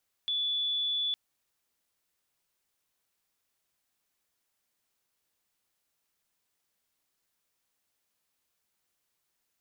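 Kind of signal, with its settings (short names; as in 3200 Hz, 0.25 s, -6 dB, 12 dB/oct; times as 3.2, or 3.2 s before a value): tone sine 3450 Hz -27.5 dBFS 0.86 s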